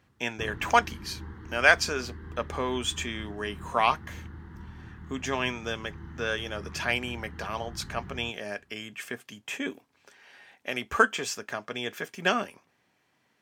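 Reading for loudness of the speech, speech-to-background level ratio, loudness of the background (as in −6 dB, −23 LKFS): −29.5 LKFS, 14.5 dB, −44.0 LKFS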